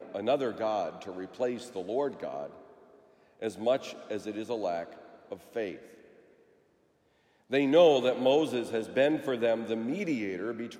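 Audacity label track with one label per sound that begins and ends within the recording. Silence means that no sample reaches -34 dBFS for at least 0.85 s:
3.420000	5.730000	sound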